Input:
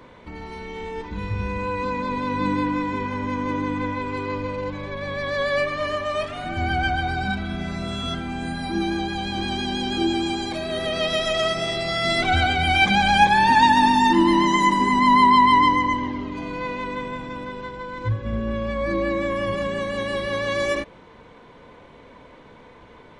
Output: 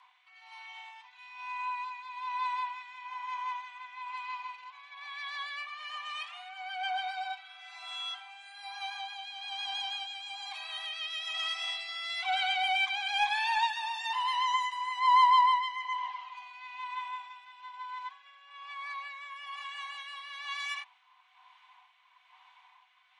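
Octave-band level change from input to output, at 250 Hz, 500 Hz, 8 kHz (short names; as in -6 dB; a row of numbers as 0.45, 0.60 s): under -40 dB, under -30 dB, -13.0 dB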